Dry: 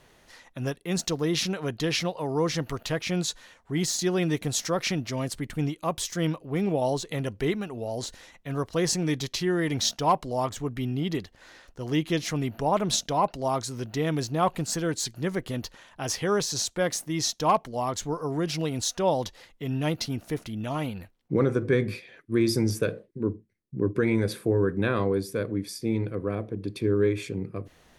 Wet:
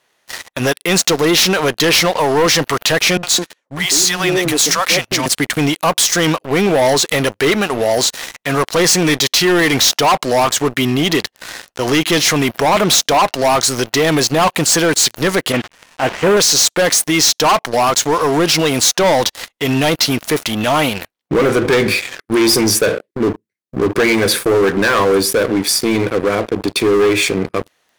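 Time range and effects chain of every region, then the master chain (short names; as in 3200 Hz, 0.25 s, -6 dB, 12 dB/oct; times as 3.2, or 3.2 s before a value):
3.17–5.26 gate -50 dBFS, range -13 dB + compressor 3:1, threshold -28 dBFS + three bands offset in time lows, highs, mids 60/210 ms, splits 210/650 Hz
15.52–16.37 delta modulation 16 kbps, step -40.5 dBFS + gate -34 dBFS, range -6 dB
whole clip: HPF 850 Hz 6 dB/oct; sample leveller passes 5; maximiser +16.5 dB; gain -7.5 dB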